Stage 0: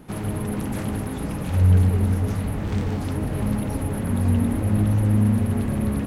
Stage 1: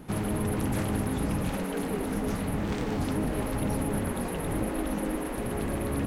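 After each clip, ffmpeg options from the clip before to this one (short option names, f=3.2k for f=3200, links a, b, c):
-af "afftfilt=real='re*lt(hypot(re,im),0.447)':imag='im*lt(hypot(re,im),0.447)':win_size=1024:overlap=0.75"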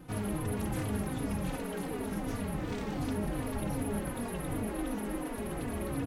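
-filter_complex "[0:a]asplit=2[a][b];[b]adelay=3.4,afreqshift=-2.7[c];[a][c]amix=inputs=2:normalize=1,volume=-2dB"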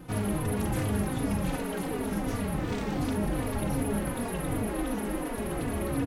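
-filter_complex "[0:a]asplit=2[a][b];[b]adelay=40,volume=-12dB[c];[a][c]amix=inputs=2:normalize=0,volume=4.5dB"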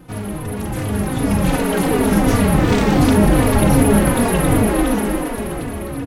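-af "dynaudnorm=f=380:g=7:m=14dB,volume=3dB"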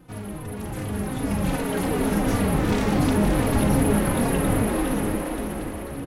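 -af "aecho=1:1:522:0.447,volume=-8dB"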